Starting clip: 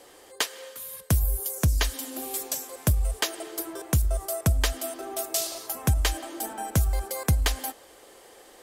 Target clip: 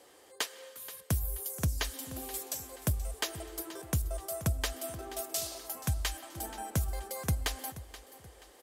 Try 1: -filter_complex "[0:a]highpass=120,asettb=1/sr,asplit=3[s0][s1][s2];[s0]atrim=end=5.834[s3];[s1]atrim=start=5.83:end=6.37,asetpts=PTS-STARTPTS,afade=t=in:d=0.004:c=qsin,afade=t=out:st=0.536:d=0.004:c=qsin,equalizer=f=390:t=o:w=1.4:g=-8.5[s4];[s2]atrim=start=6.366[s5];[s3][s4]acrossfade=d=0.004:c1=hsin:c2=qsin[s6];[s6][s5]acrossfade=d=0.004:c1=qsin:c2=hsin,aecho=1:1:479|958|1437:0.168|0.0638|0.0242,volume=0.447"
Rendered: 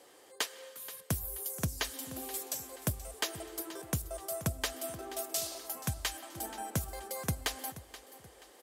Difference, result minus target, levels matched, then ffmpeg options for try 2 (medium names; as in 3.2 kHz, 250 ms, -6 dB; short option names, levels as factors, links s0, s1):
125 Hz band -3.0 dB
-filter_complex "[0:a]highpass=56,asettb=1/sr,asplit=3[s0][s1][s2];[s0]atrim=end=5.834[s3];[s1]atrim=start=5.83:end=6.37,asetpts=PTS-STARTPTS,afade=t=in:d=0.004:c=qsin,afade=t=out:st=0.536:d=0.004:c=qsin,equalizer=f=390:t=o:w=1.4:g=-8.5[s4];[s2]atrim=start=6.366[s5];[s3][s4]acrossfade=d=0.004:c1=hsin:c2=qsin[s6];[s6][s5]acrossfade=d=0.004:c1=qsin:c2=hsin,aecho=1:1:479|958|1437:0.168|0.0638|0.0242,volume=0.447"